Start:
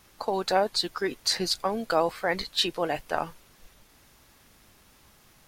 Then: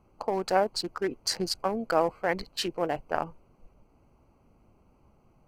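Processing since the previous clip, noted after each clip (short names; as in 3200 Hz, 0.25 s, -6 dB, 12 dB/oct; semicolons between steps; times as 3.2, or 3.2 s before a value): Wiener smoothing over 25 samples; bell 3700 Hz -14 dB 0.29 oct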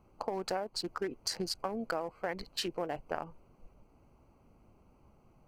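compressor 12:1, threshold -30 dBFS, peak gain reduction 12.5 dB; gain -1 dB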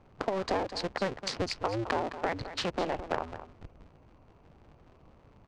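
cycle switcher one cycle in 2, inverted; air absorption 120 m; echo 0.213 s -12 dB; gain +5 dB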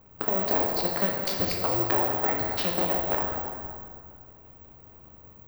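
plate-style reverb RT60 2.1 s, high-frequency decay 0.65×, DRR -0.5 dB; careless resampling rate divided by 2×, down filtered, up zero stuff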